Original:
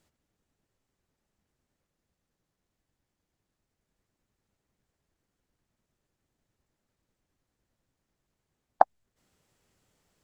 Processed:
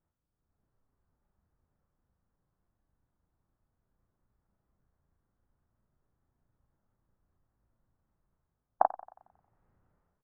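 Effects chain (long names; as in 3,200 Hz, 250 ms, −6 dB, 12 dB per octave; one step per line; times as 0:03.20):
low-pass filter 1,300 Hz 24 dB per octave
parametric band 390 Hz −9 dB 2.7 octaves
automatic gain control gain up to 11 dB
double-tracking delay 36 ms −2.5 dB
feedback echo with a high-pass in the loop 90 ms, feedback 52%, high-pass 220 Hz, level −18 dB
level −6 dB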